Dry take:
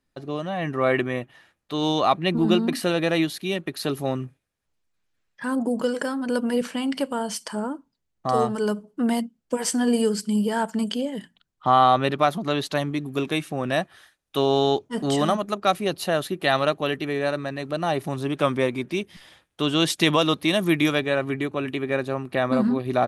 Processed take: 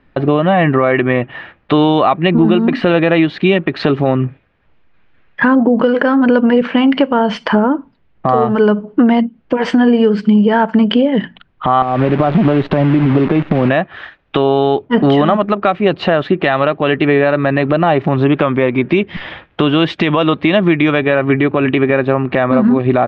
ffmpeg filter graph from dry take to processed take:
-filter_complex "[0:a]asettb=1/sr,asplit=3[a][b][c];[a]atrim=end=11.824[d];[b]atrim=start=11.82:end=13.69,asetpts=PTS-STARTPTS,afade=t=in:d=0.004:c=qsin,afade=t=out:st=1.866:d=0.004:c=qsin,tiltshelf=f=1.1k:g=9.5,acompressor=threshold=-23dB:ratio=8:attack=3.2:release=140:knee=1:detection=peak,acrusher=bits=7:dc=4:mix=0:aa=0.000001[e];[c]atrim=start=13.686[f];[d][e]acrossfade=d=0.004:c1=hsin:c2=qsin[g];[g][f]acrossfade=d=0.004:c1=qsin:c2=hsin,lowpass=f=2.8k:w=0.5412,lowpass=f=2.8k:w=1.3066,acompressor=threshold=-33dB:ratio=5,alimiter=level_in=25dB:limit=-1dB:release=50:level=0:latency=1,volume=-1dB"

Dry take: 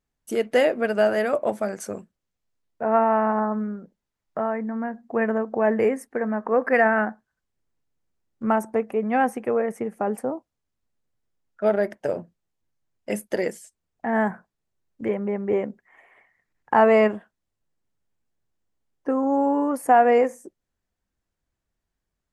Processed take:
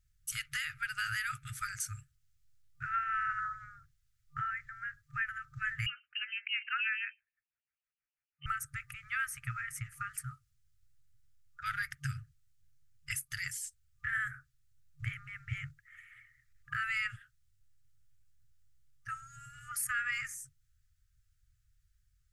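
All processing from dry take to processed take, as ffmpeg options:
-filter_complex "[0:a]asettb=1/sr,asplit=3[a][b][c];[a]atrim=end=5.864[d];[b]atrim=start=5.86:end=8.46,asetpts=PTS-STARTPTS,afade=t=in:d=0.004:c=qsin,afade=t=out:st=2.596:d=0.004:c=qsin,highpass=890,acrossover=split=800[e][f];[e]aeval=exprs='val(0)*(1-1/2+1/2*cos(2*PI*6.2*n/s))':c=same[g];[f]aeval=exprs='val(0)*(1-1/2-1/2*cos(2*PI*6.2*n/s))':c=same[h];[g][h]amix=inputs=2:normalize=0,lowpass=f=2.8k:t=q:w=0.5098,lowpass=f=2.8k:t=q:w=0.6013,lowpass=f=2.8k:t=q:w=0.9,lowpass=f=2.8k:t=q:w=2.563,afreqshift=-3300[i];[c]atrim=start=8.456[j];[d][i]acrossfade=d=0.004:c1=hsin:c2=qsin[k];[k][j]acrossfade=d=0.004:c1=qsin:c2=hsin,afftfilt=real='re*(1-between(b*sr/4096,140,1200))':imag='im*(1-between(b*sr/4096,140,1200))':win_size=4096:overlap=0.75,bass=f=250:g=12,treble=f=4k:g=6,alimiter=level_in=0.5dB:limit=-24dB:level=0:latency=1:release=311,volume=-0.5dB"

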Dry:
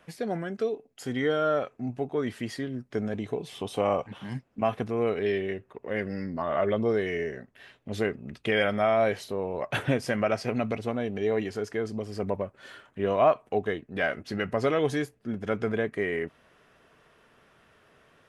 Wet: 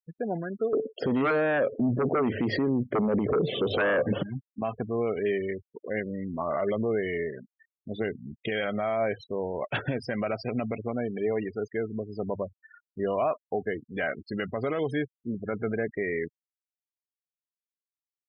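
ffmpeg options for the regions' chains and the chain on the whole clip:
-filter_complex "[0:a]asettb=1/sr,asplit=3[a][b][c];[a]atrim=end=0.734[d];[b]atrim=start=0.73:end=4.23,asetpts=PTS-STARTPTS,afade=t=in:d=0.004:c=qsin,afade=t=out:st=3.496:d=0.004:c=qsin,lowshelf=f=680:t=q:w=3:g=7.5,aeval=exprs='0.562*sin(PI/2*3.55*val(0)/0.562)':c=same,highpass=120,lowpass=2.9k[e];[c]atrim=start=4.226[f];[d][e]acrossfade=d=0.004:c1=hsin:c2=qsin[g];[g][f]acrossfade=d=0.004:c1=qsin:c2=hsin,bandreject=f=50:t=h:w=6,bandreject=f=100:t=h:w=6,afftfilt=real='re*gte(hypot(re,im),0.0251)':imag='im*gte(hypot(re,im),0.0251)':win_size=1024:overlap=0.75,alimiter=limit=-18.5dB:level=0:latency=1:release=58"

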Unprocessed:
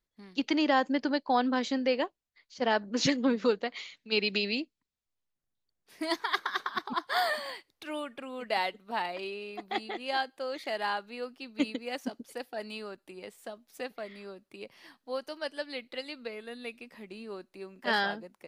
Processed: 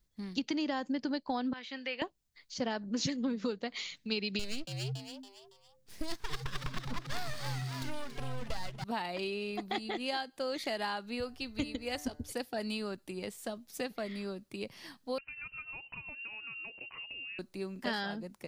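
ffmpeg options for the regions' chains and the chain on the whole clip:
-filter_complex "[0:a]asettb=1/sr,asplit=3[a][b][c];[a]atrim=end=1.534[d];[b]atrim=start=1.53:end=2.02,asetpts=PTS-STARTPTS,afade=t=in:d=0.004:c=qsin,afade=t=out:st=0.486:d=0.004:c=qsin,acrossover=split=3000[e][f];[f]acompressor=threshold=-54dB:ratio=4:attack=1:release=60[g];[e][g]amix=inputs=2:normalize=0,bandpass=f=2.7k:t=q:w=1.2[h];[c]atrim=start=2.016[i];[d][h]acrossfade=d=0.004:c1=hsin:c2=qsin[j];[j][i]acrossfade=d=0.004:c1=qsin:c2=hsin,asettb=1/sr,asplit=3[k][l][m];[k]atrim=end=4.394[n];[l]atrim=start=4.39:end=8.84,asetpts=PTS-STARTPTS,afade=t=in:d=0.004:c=qsin,afade=t=out:st=4.446:d=0.004:c=qsin,aeval=exprs='max(val(0),0)':c=same,asplit=5[o][p][q][r][s];[p]adelay=280,afreqshift=130,volume=-9dB[t];[q]adelay=560,afreqshift=260,volume=-17.4dB[u];[r]adelay=840,afreqshift=390,volume=-25.8dB[v];[s]adelay=1120,afreqshift=520,volume=-34.2dB[w];[o][t][u][v][w]amix=inputs=5:normalize=0,atrim=end_sample=196245[x];[m]atrim=start=8.836[y];[n][x]acrossfade=d=0.004:c1=hsin:c2=qsin[z];[z][y]acrossfade=d=0.004:c1=qsin:c2=hsin,asettb=1/sr,asplit=3[aa][ab][ac];[aa]atrim=end=11.204[ad];[ab]atrim=start=11.2:end=12.32,asetpts=PTS-STARTPTS,afade=t=in:d=0.004:c=qsin,afade=t=out:st=1.116:d=0.004:c=qsin,lowshelf=f=120:t=q:w=3:g=14,bandreject=f=148.4:t=h:w=4,bandreject=f=296.8:t=h:w=4,bandreject=f=445.2:t=h:w=4,bandreject=f=593.6:t=h:w=4,bandreject=f=742:t=h:w=4,bandreject=f=890.4:t=h:w=4,bandreject=f=1.0388k:t=h:w=4,bandreject=f=1.1872k:t=h:w=4,bandreject=f=1.3356k:t=h:w=4,bandreject=f=1.484k:t=h:w=4,bandreject=f=1.6324k:t=h:w=4,bandreject=f=1.7808k:t=h:w=4,bandreject=f=1.9292k:t=h:w=4,bandreject=f=2.0776k:t=h:w=4[ae];[ac]atrim=start=12.316[af];[ad][ae]acrossfade=d=0.004:c1=hsin:c2=qsin[ag];[ag][af]acrossfade=d=0.004:c1=qsin:c2=hsin,asettb=1/sr,asplit=3[ah][ai][aj];[ah]atrim=end=15.184[ak];[ai]atrim=start=15.18:end=17.39,asetpts=PTS-STARTPTS,afade=t=in:d=0.004:c=qsin,afade=t=out:st=2.206:d=0.004:c=qsin,lowshelf=f=370:g=11,acompressor=threshold=-45dB:ratio=6:attack=3.2:release=140:knee=1:detection=peak,lowpass=f=2.6k:t=q:w=0.5098,lowpass=f=2.6k:t=q:w=0.6013,lowpass=f=2.6k:t=q:w=0.9,lowpass=f=2.6k:t=q:w=2.563,afreqshift=-3000[al];[aj]atrim=start=17.386[am];[ak][al]acrossfade=d=0.004:c1=hsin:c2=qsin[an];[an][am]acrossfade=d=0.004:c1=qsin:c2=hsin,bass=f=250:g=12,treble=f=4k:g=10,acompressor=threshold=-34dB:ratio=5,equalizer=f=13k:w=0.47:g=-5,volume=2dB"

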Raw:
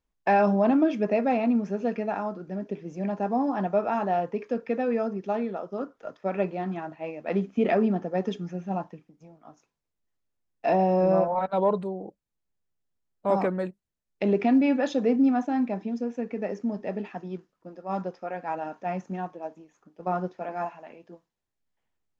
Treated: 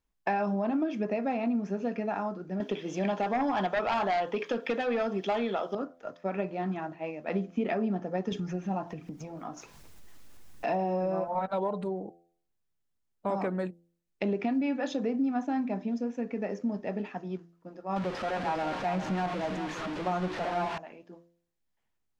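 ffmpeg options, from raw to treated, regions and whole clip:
-filter_complex "[0:a]asettb=1/sr,asplit=3[a][b][c];[a]atrim=end=2.604[d];[b]atrim=start=2.6:end=5.75,asetpts=PTS-STARTPTS,afade=t=in:d=0.004:c=qsin,afade=t=out:st=3.146:d=0.004:c=qsin,highpass=f=520:p=1,equalizer=f=3.3k:w=4.7:g=14.5,aeval=exprs='0.158*sin(PI/2*2.24*val(0)/0.158)':c=same[e];[c]atrim=start=5.746[f];[d][e]acrossfade=d=0.004:c1=hsin:c2=qsin[g];[g][f]acrossfade=d=0.004:c1=qsin:c2=hsin,asettb=1/sr,asplit=3[h][i][j];[h]atrim=end=8.324[k];[i]atrim=start=8.32:end=12,asetpts=PTS-STARTPTS,afade=t=in:d=0.004:c=qsin,afade=t=out:st=3.676:d=0.004:c=qsin,acompressor=mode=upward:threshold=-26dB:ratio=2.5:attack=3.2:release=140:knee=2.83:detection=peak,aphaser=in_gain=1:out_gain=1:delay=4.2:decay=0.26:speed=1.3:type=triangular[l];[j]atrim=start=11.996[m];[k][l]acrossfade=d=0.004:c1=hsin:c2=qsin[n];[n][m]acrossfade=d=0.004:c1=qsin:c2=hsin,asettb=1/sr,asplit=3[o][p][q];[o]atrim=end=17.964[r];[p]atrim=start=17.96:end=20.78,asetpts=PTS-STARTPTS,afade=t=in:d=0.004:c=qsin,afade=t=out:st=2.816:d=0.004:c=qsin,aeval=exprs='val(0)+0.5*0.0316*sgn(val(0))':c=same,lowpass=3.7k,aecho=1:1:402:0.355,atrim=end_sample=124362[s];[q]atrim=start=20.776[t];[r][s]acrossfade=d=0.004:c1=hsin:c2=qsin[u];[u][t]acrossfade=d=0.004:c1=qsin:c2=hsin,acompressor=threshold=-25dB:ratio=6,equalizer=f=520:t=o:w=0.77:g=-2.5,bandreject=f=85.47:t=h:w=4,bandreject=f=170.94:t=h:w=4,bandreject=f=256.41:t=h:w=4,bandreject=f=341.88:t=h:w=4,bandreject=f=427.35:t=h:w=4,bandreject=f=512.82:t=h:w=4,bandreject=f=598.29:t=h:w=4,bandreject=f=683.76:t=h:w=4,bandreject=f=769.23:t=h:w=4"

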